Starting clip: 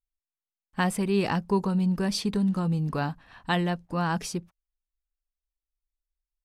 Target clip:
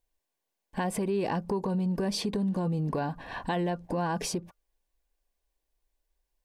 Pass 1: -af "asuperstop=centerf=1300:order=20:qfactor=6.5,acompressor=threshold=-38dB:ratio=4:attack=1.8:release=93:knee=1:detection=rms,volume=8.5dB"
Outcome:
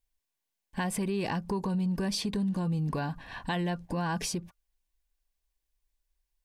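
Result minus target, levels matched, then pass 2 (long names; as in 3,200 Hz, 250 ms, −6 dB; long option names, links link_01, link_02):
500 Hz band −3.5 dB
-af "asuperstop=centerf=1300:order=20:qfactor=6.5,equalizer=frequency=500:width=0.58:gain=10,acompressor=threshold=-38dB:ratio=4:attack=1.8:release=93:knee=1:detection=rms,volume=8.5dB"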